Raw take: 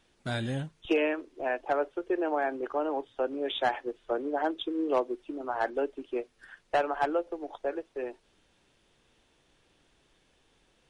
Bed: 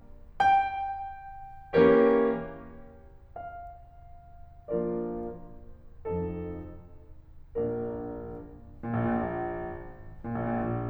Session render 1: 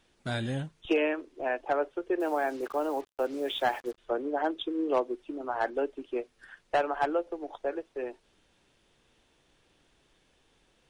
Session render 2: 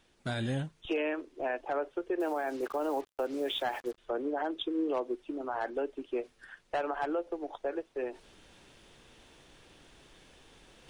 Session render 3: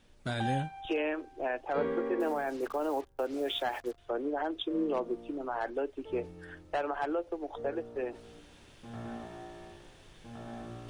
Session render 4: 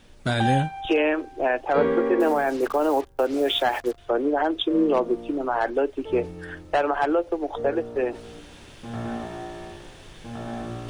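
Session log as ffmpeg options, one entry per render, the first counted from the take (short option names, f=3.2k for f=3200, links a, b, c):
-filter_complex "[0:a]asettb=1/sr,asplit=3[a][b][c];[a]atrim=end=2.204[d];[b]atrim=start=2.2:end=3.98,asetpts=PTS-STARTPTS,afade=t=in:d=0.004:c=qsin,afade=t=out:st=1.776:d=0.004:c=qsin,acrusher=bits=7:mix=0:aa=0.5[e];[c]atrim=start=3.976[f];[d][e]acrossfade=d=0.004:c1=hsin:c2=qsin[g];[g][f]acrossfade=d=0.004:c1=qsin:c2=hsin"
-af "alimiter=limit=-24dB:level=0:latency=1:release=62,areverse,acompressor=mode=upward:threshold=-47dB:ratio=2.5,areverse"
-filter_complex "[1:a]volume=-13.5dB[a];[0:a][a]amix=inputs=2:normalize=0"
-af "volume=10.5dB"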